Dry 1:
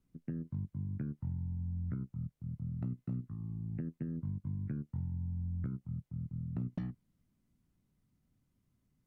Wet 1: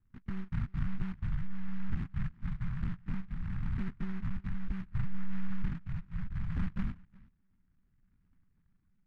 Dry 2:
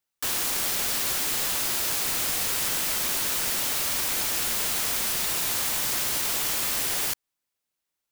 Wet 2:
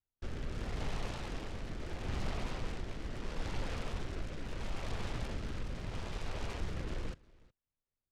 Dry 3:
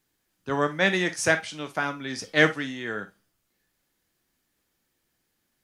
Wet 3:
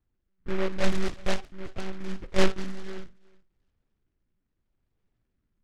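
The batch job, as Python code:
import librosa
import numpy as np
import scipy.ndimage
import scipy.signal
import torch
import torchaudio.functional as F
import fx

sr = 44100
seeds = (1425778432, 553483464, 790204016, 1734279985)

p1 = fx.rotary(x, sr, hz=0.75)
p2 = scipy.signal.sosfilt(scipy.signal.butter(16, 2200.0, 'lowpass', fs=sr, output='sos'), p1)
p3 = fx.notch(p2, sr, hz=370.0, q=12.0)
p4 = fx.lpc_monotone(p3, sr, seeds[0], pitch_hz=190.0, order=16)
p5 = fx.tilt_eq(p4, sr, slope=-3.5)
p6 = p5 + fx.echo_single(p5, sr, ms=366, db=-24.0, dry=0)
p7 = fx.noise_mod_delay(p6, sr, seeds[1], noise_hz=1400.0, depth_ms=0.14)
y = F.gain(torch.from_numpy(p7), -6.5).numpy()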